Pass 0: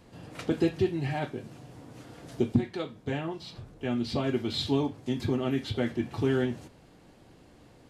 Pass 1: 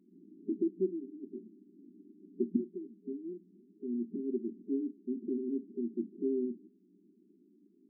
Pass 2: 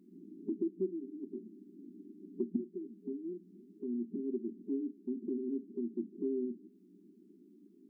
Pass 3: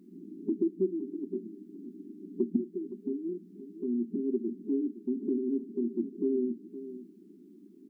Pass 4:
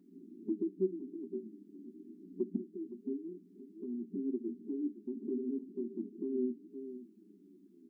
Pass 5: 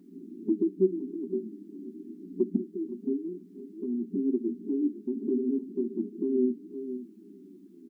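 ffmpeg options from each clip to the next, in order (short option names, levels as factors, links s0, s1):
-af "afftfilt=real='re*between(b*sr/4096,180,410)':imag='im*between(b*sr/4096,180,410)':win_size=4096:overlap=0.75,volume=0.562"
-af "acompressor=threshold=0.00355:ratio=1.5,volume=1.68"
-af "aecho=1:1:517:0.211,volume=2"
-af "flanger=delay=6.8:depth=7.5:regen=34:speed=0.3:shape=triangular,volume=0.75"
-af "aecho=1:1:485:0.1,volume=2.66"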